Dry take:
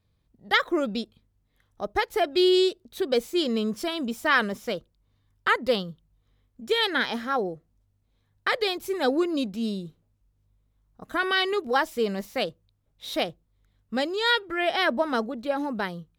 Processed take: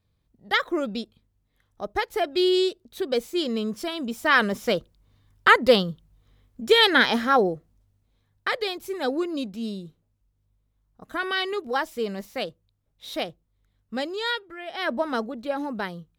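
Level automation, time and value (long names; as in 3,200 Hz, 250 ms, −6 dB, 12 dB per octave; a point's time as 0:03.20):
0:04.02 −1 dB
0:04.77 +7 dB
0:07.41 +7 dB
0:08.69 −2.5 dB
0:14.20 −2.5 dB
0:14.65 −13 dB
0:14.92 −1 dB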